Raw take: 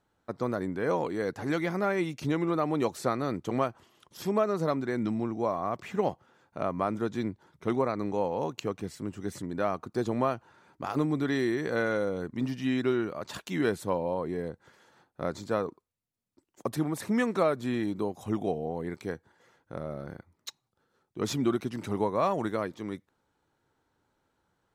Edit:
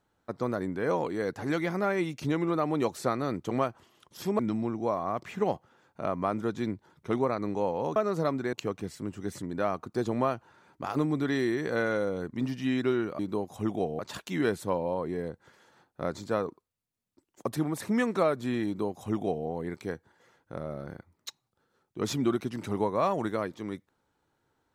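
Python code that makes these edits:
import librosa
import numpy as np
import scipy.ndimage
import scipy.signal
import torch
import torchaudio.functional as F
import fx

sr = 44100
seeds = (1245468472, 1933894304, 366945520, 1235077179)

y = fx.edit(x, sr, fx.move(start_s=4.39, length_s=0.57, to_s=8.53),
    fx.duplicate(start_s=17.86, length_s=0.8, to_s=13.19), tone=tone)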